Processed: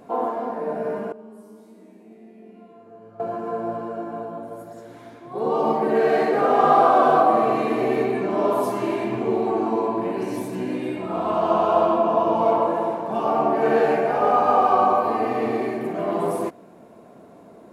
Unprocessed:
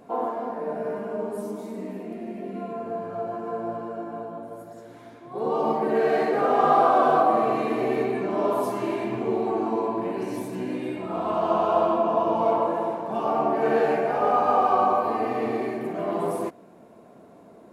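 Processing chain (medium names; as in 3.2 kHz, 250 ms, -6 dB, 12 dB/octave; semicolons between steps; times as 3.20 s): 1.12–3.20 s: feedback comb 110 Hz, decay 1.7 s, mix 90%; trim +3 dB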